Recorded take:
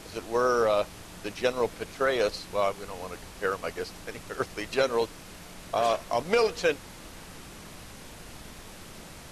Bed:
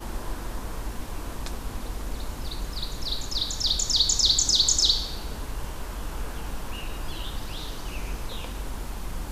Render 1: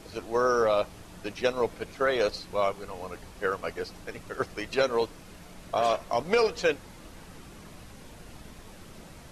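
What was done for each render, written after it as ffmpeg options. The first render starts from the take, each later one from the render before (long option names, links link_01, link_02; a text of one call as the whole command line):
ffmpeg -i in.wav -af "afftdn=noise_reduction=6:noise_floor=-46" out.wav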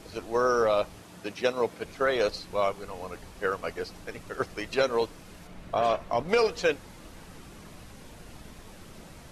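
ffmpeg -i in.wav -filter_complex "[0:a]asettb=1/sr,asplit=3[link_01][link_02][link_03];[link_01]atrim=end=0.994[link_04];[link_02]atrim=start=0.99:end=1.85,asetpts=PTS-STARTPTS,afade=type=in:duration=0.004:curve=qsin,afade=type=out:start_time=0.856:duration=0.004:curve=qsin,highpass=110[link_05];[link_03]atrim=start=1.846[link_06];[link_04][link_05]acrossfade=duration=0.004:curve1=hsin:curve2=qsin[link_07];[link_07][link_06]acrossfade=duration=0.004:curve1=qsin:curve2=hsin,asettb=1/sr,asplit=3[link_08][link_09][link_10];[link_08]atrim=end=5.474[link_11];[link_09]atrim=start=5.47:end=6.29,asetpts=PTS-STARTPTS,afade=type=in:duration=0.004:curve=qsin,afade=type=out:start_time=0.816:duration=0.004:curve=qsin,bass=frequency=250:gain=3,treble=frequency=4000:gain=-8[link_12];[link_10]atrim=start=6.286[link_13];[link_11][link_12]acrossfade=duration=0.004:curve1=hsin:curve2=qsin[link_14];[link_14][link_13]acrossfade=duration=0.004:curve1=qsin:curve2=hsin" out.wav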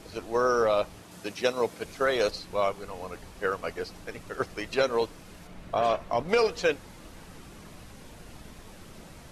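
ffmpeg -i in.wav -filter_complex "[0:a]asettb=1/sr,asplit=3[link_01][link_02][link_03];[link_01]atrim=end=1.114[link_04];[link_02]atrim=start=1.11:end=2.31,asetpts=PTS-STARTPTS,afade=type=in:duration=0.004:curve=qsin,afade=type=out:start_time=1.196:duration=0.004:curve=qsin,bass=frequency=250:gain=0,treble=frequency=4000:gain=5[link_05];[link_03]atrim=start=2.306[link_06];[link_04][link_05]acrossfade=duration=0.004:curve1=hsin:curve2=qsin[link_07];[link_07][link_06]acrossfade=duration=0.004:curve1=qsin:curve2=hsin" out.wav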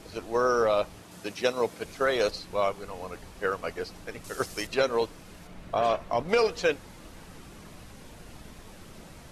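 ffmpeg -i in.wav -filter_complex "[0:a]asettb=1/sr,asplit=3[link_01][link_02][link_03];[link_01]atrim=end=4.244[link_04];[link_02]atrim=start=4.24:end=4.67,asetpts=PTS-STARTPTS,afade=type=in:duration=0.004:curve=qsin,afade=type=out:start_time=0.426:duration=0.004:curve=qsin,bass=frequency=250:gain=0,treble=frequency=4000:gain=13[link_05];[link_03]atrim=start=4.666[link_06];[link_04][link_05]acrossfade=duration=0.004:curve1=hsin:curve2=qsin[link_07];[link_07][link_06]acrossfade=duration=0.004:curve1=qsin:curve2=hsin" out.wav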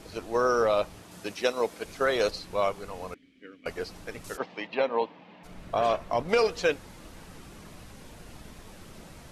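ffmpeg -i in.wav -filter_complex "[0:a]asettb=1/sr,asplit=3[link_01][link_02][link_03];[link_01]atrim=end=1.344[link_04];[link_02]atrim=start=1.34:end=1.88,asetpts=PTS-STARTPTS,afade=type=in:duration=0.004:curve=qsin,afade=type=out:start_time=0.536:duration=0.004:curve=qsin,equalizer=frequency=120:width_type=o:width=1:gain=-9.5[link_05];[link_03]atrim=start=1.876[link_06];[link_04][link_05]acrossfade=duration=0.004:curve1=hsin:curve2=qsin[link_07];[link_07][link_06]acrossfade=duration=0.004:curve1=qsin:curve2=hsin,asettb=1/sr,asplit=3[link_08][link_09][link_10];[link_08]atrim=end=3.144[link_11];[link_09]atrim=start=3.14:end=3.66,asetpts=PTS-STARTPTS,afade=type=in:duration=0.004:curve=qsin,afade=type=out:start_time=0.516:duration=0.004:curve=qsin,asplit=3[link_12][link_13][link_14];[link_12]bandpass=frequency=270:width_type=q:width=8,volume=0dB[link_15];[link_13]bandpass=frequency=2290:width_type=q:width=8,volume=-6dB[link_16];[link_14]bandpass=frequency=3010:width_type=q:width=8,volume=-9dB[link_17];[link_15][link_16][link_17]amix=inputs=3:normalize=0[link_18];[link_10]atrim=start=3.656[link_19];[link_11][link_18]acrossfade=duration=0.004:curve1=hsin:curve2=qsin[link_20];[link_20][link_19]acrossfade=duration=0.004:curve1=qsin:curve2=hsin,asplit=3[link_21][link_22][link_23];[link_21]afade=type=out:start_time=4.36:duration=0.02[link_24];[link_22]highpass=frequency=180:width=0.5412,highpass=frequency=180:width=1.3066,equalizer=frequency=380:width_type=q:width=4:gain=-7,equalizer=frequency=880:width_type=q:width=4:gain=7,equalizer=frequency=1400:width_type=q:width=4:gain=-9,lowpass=frequency=3200:width=0.5412,lowpass=frequency=3200:width=1.3066,afade=type=in:start_time=4.36:duration=0.02,afade=type=out:start_time=5.43:duration=0.02[link_25];[link_23]afade=type=in:start_time=5.43:duration=0.02[link_26];[link_24][link_25][link_26]amix=inputs=3:normalize=0" out.wav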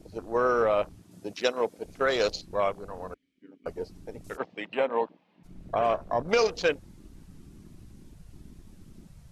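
ffmpeg -i in.wav -af "afwtdn=0.0126,bass=frequency=250:gain=0,treble=frequency=4000:gain=6" out.wav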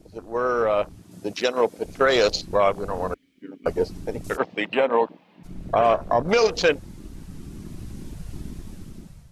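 ffmpeg -i in.wav -af "dynaudnorm=framelen=380:gausssize=5:maxgain=14dB,alimiter=limit=-9dB:level=0:latency=1:release=108" out.wav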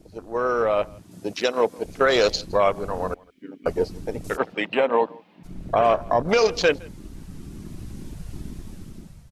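ffmpeg -i in.wav -filter_complex "[0:a]asplit=2[link_01][link_02];[link_02]adelay=163.3,volume=-25dB,highshelf=frequency=4000:gain=-3.67[link_03];[link_01][link_03]amix=inputs=2:normalize=0" out.wav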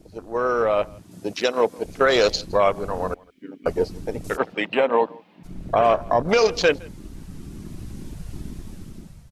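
ffmpeg -i in.wav -af "volume=1dB" out.wav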